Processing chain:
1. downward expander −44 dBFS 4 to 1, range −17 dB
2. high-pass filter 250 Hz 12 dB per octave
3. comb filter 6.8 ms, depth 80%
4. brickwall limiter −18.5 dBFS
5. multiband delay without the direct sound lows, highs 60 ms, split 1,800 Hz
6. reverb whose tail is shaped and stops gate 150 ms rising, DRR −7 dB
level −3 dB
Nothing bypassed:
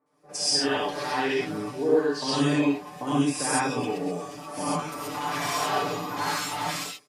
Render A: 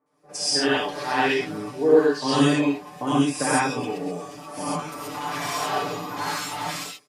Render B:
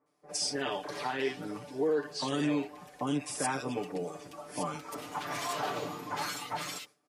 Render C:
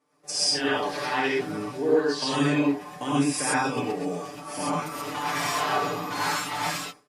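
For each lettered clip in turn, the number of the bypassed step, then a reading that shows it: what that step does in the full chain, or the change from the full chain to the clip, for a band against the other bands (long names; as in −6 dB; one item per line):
4, change in crest factor +2.5 dB
6, echo-to-direct ratio 9.0 dB to −2.5 dB
5, echo-to-direct ratio 9.0 dB to 7.0 dB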